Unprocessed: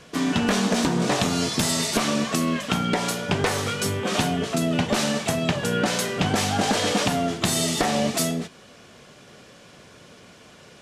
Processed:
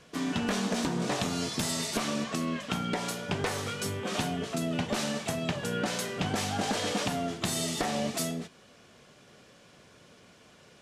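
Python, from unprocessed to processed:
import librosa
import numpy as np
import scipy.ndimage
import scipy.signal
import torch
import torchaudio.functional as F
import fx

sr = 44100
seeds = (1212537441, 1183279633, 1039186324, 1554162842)

y = fx.high_shelf(x, sr, hz=11000.0, db=-11.5, at=(2.24, 2.71))
y = F.gain(torch.from_numpy(y), -8.0).numpy()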